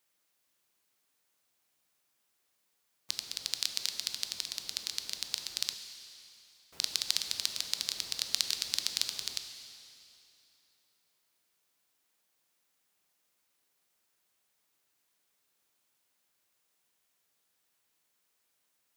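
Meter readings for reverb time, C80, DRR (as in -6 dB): 2.9 s, 8.5 dB, 7.0 dB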